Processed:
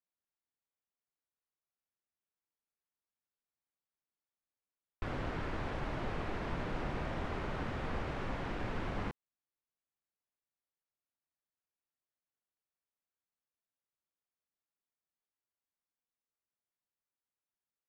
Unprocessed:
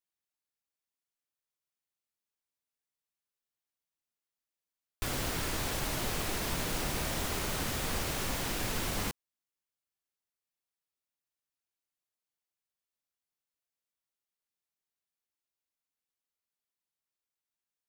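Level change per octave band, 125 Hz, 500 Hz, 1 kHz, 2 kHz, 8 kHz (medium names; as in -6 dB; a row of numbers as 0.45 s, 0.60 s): -2.0 dB, -2.0 dB, -2.5 dB, -5.5 dB, -27.5 dB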